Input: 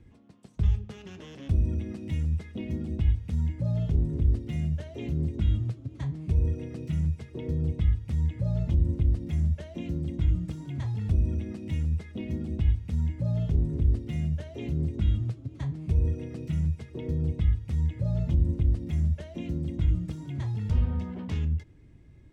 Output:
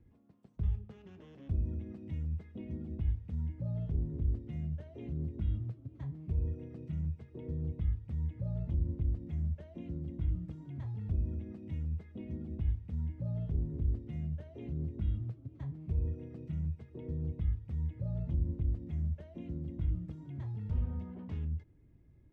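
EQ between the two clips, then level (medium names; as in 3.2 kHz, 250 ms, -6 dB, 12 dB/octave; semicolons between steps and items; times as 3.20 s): low-pass 1.2 kHz 6 dB/octave; -8.5 dB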